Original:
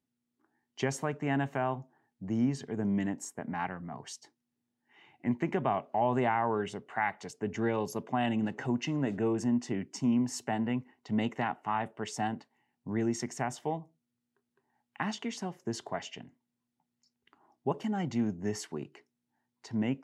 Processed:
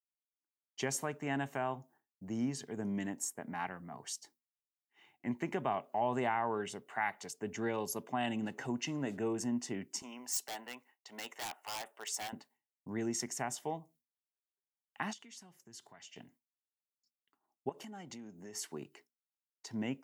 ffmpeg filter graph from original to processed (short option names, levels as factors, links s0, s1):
-filter_complex "[0:a]asettb=1/sr,asplit=3[s0][s1][s2];[s0]atrim=end=10.024[s3];[s1]atrim=start=10.02:end=12.33,asetpts=PTS-STARTPTS,afade=t=in:d=0.004:c=qsin,afade=t=out:st=2.306:d=0.004:c=qsin,highpass=650,highshelf=f=10000:g=2.5,aeval=exprs='0.0237*(abs(mod(val(0)/0.0237+3,4)-2)-1)':c=same[s4];[s2]atrim=start=12.326[s5];[s3][s4]acrossfade=d=0.004:c1=hsin:c2=qsin[s6];[s6][s5]acrossfade=d=0.004:c1=qsin:c2=hsin,asettb=1/sr,asplit=3[s7][s8][s9];[s7]atrim=end=15.134[s10];[s8]atrim=start=15.13:end=16.16,asetpts=PTS-STARTPTS,afade=t=in:d=0.004:c=qsin,afade=t=out:st=1.026:d=0.004:c=qsin,equalizer=f=520:w=0.73:g=-9,acompressor=threshold=0.002:ratio=2.5:attack=3.2:release=140:knee=1:detection=peak[s11];[s9]atrim=start=16.156[s12];[s10][s11]acrossfade=d=0.004:c1=hsin:c2=qsin[s13];[s13][s12]acrossfade=d=0.004:c1=qsin:c2=hsin,asettb=1/sr,asplit=3[s14][s15][s16];[s14]atrim=end=17.694[s17];[s15]atrim=start=17.69:end=18.73,asetpts=PTS-STARTPTS,afade=t=in:d=0.004:c=qsin,afade=t=out:st=1.036:d=0.004:c=qsin,acompressor=threshold=0.0112:ratio=4:attack=3.2:release=140:knee=1:detection=peak,equalizer=f=64:t=o:w=1.3:g=-14.5[s18];[s16]atrim=start=18.726[s19];[s17][s18]acrossfade=d=0.004:c1=hsin:c2=qsin[s20];[s20][s19]acrossfade=d=0.004:c1=qsin:c2=hsin,aemphasis=mode=production:type=50fm,agate=range=0.0224:threshold=0.00178:ratio=3:detection=peak,lowshelf=f=160:g=-7,volume=0.631"